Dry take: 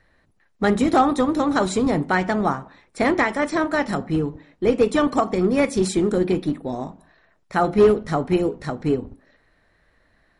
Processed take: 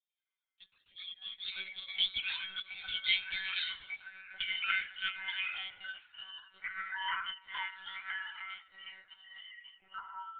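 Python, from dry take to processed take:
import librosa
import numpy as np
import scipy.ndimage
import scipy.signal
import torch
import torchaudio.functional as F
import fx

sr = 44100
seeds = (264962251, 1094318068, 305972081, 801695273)

p1 = fx.band_shuffle(x, sr, order='4321')
p2 = fx.doppler_pass(p1, sr, speed_mps=21, closest_m=6.5, pass_at_s=2.4)
p3 = fx.dynamic_eq(p2, sr, hz=1100.0, q=0.95, threshold_db=-49.0, ratio=4.0, max_db=-7)
p4 = fx.env_flanger(p3, sr, rest_ms=2.2, full_db=-25.5)
p5 = p4 + fx.echo_single(p4, sr, ms=256, db=-22.5, dry=0)
p6 = fx.echo_pitch(p5, sr, ms=89, semitones=-7, count=3, db_per_echo=-3.0)
p7 = fx.lpc_monotone(p6, sr, seeds[0], pitch_hz=190.0, order=16)
y = fx.upward_expand(p7, sr, threshold_db=-53.0, expansion=1.5)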